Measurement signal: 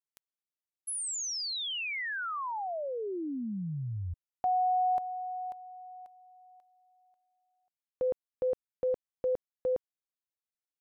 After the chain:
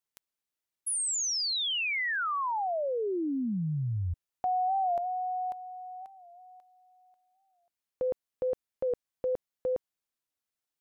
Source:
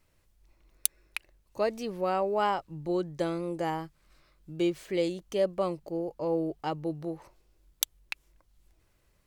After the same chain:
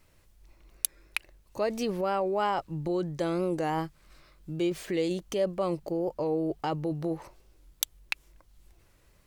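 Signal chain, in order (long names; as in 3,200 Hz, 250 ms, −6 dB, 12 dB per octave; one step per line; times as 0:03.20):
in parallel at −2 dB: compressor whose output falls as the input rises −34 dBFS, ratio −0.5
on the sum: wow of a warped record 45 rpm, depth 100 cents
level −1.5 dB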